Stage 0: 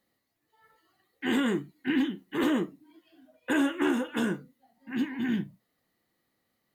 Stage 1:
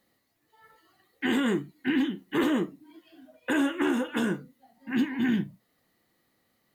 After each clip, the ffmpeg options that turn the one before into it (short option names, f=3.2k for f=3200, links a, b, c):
-af "alimiter=limit=-22.5dB:level=0:latency=1:release=392,volume=5.5dB"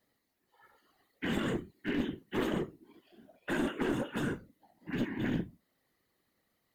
-af "afftfilt=real='hypot(re,im)*cos(2*PI*random(0))':imag='hypot(re,im)*sin(2*PI*random(1))':win_size=512:overlap=0.75,aeval=exprs='clip(val(0),-1,0.0335)':c=same"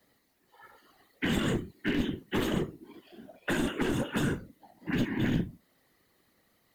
-filter_complex "[0:a]acrossover=split=160|3000[a][b][c];[b]acompressor=threshold=-37dB:ratio=6[d];[a][d][c]amix=inputs=3:normalize=0,volume=8.5dB"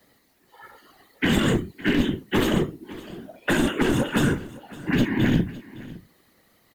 -af "aecho=1:1:561:0.112,volume=8dB"